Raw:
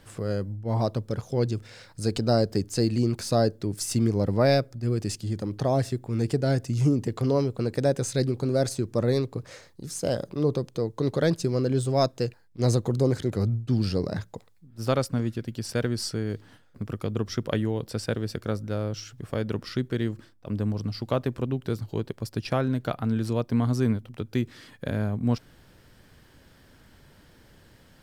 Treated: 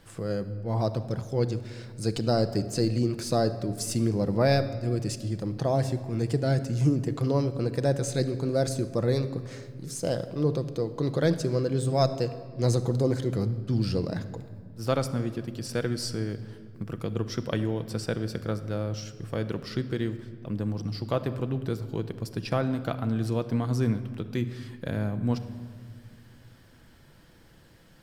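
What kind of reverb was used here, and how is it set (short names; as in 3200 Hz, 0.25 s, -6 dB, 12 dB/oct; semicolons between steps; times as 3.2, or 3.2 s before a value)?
shoebox room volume 3000 m³, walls mixed, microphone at 0.72 m; gain -2 dB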